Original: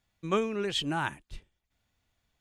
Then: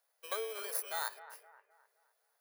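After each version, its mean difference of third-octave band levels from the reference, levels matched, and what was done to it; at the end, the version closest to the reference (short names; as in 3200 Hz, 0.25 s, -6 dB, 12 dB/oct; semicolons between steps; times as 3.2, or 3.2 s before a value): 16.0 dB: FFT order left unsorted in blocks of 16 samples; compressor 4:1, threshold -35 dBFS, peak gain reduction 11.5 dB; rippled Chebyshev high-pass 440 Hz, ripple 3 dB; analogue delay 0.259 s, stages 4096, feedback 40%, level -14 dB; gain +4 dB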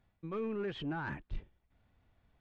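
7.0 dB: dynamic EQ 1600 Hz, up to +5 dB, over -45 dBFS, Q 2; reverse; compressor 10:1, threshold -37 dBFS, peak gain reduction 17 dB; reverse; soft clip -37.5 dBFS, distortion -12 dB; tape spacing loss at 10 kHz 39 dB; gain +8.5 dB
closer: second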